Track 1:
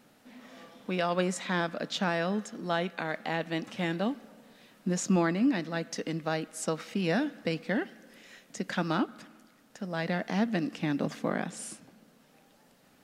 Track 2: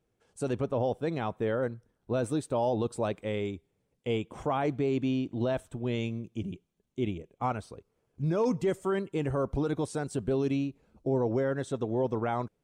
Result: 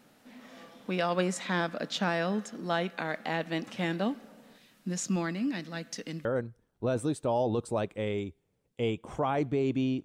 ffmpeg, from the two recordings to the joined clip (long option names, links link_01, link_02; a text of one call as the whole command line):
ffmpeg -i cue0.wav -i cue1.wav -filter_complex "[0:a]asettb=1/sr,asplit=3[link_01][link_02][link_03];[link_01]atrim=end=4.584[link_04];[link_02]atrim=start=4.58:end=6.25,asetpts=PTS-STARTPTS,afade=type=in:duration=0.004:curve=qsin,afade=type=out:start_time=1.666:duration=0.004:curve=qsin,equalizer=frequency=580:width=0.35:gain=-7.5[link_05];[link_03]atrim=start=6.246[link_06];[link_04][link_05]acrossfade=duration=0.004:curve1=hsin:curve2=qsin[link_07];[link_07][link_06]acrossfade=duration=0.004:curve1=qsin:curve2=hsin,apad=whole_dur=10.04,atrim=end=10.04,atrim=end=6.252[link_08];[1:a]atrim=start=1.518:end=5.31[link_09];[link_08][link_09]acrossfade=duration=0.004:curve1=hsin:curve2=hsin" out.wav